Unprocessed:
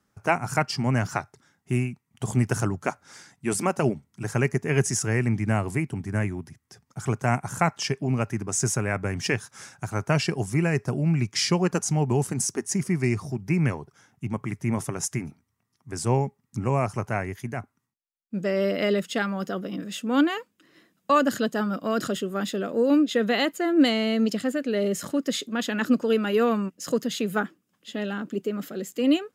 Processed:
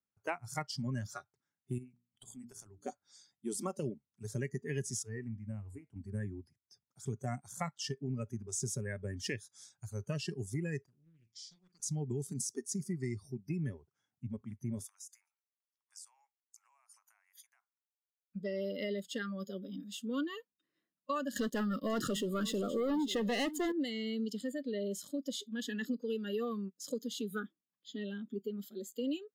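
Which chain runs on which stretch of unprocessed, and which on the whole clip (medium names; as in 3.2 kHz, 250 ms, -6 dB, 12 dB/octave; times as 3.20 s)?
1.78–2.84 s: hum notches 60/120/180/240/300/360/420 Hz + compression 3:1, threshold -33 dBFS
5.03–5.96 s: treble shelf 10 kHz -7.5 dB + feedback comb 92 Hz, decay 0.27 s, harmonics odd
10.86–11.80 s: amplifier tone stack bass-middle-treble 6-0-2 + flutter echo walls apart 7.5 m, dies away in 0.22 s + loudspeaker Doppler distortion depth 0.48 ms
14.86–18.36 s: steep high-pass 890 Hz + compression 8:1, threshold -40 dBFS + treble shelf 7.2 kHz +5.5 dB
21.36–23.72 s: bass shelf 72 Hz +9 dB + waveshaping leveller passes 3 + delay 538 ms -14.5 dB
whole clip: spectral noise reduction 19 dB; compression 3:1, threshold -25 dBFS; trim -9 dB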